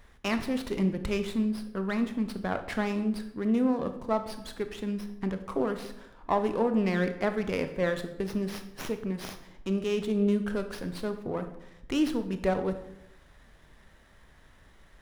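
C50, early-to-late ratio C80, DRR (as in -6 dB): 10.5 dB, 13.5 dB, 8.0 dB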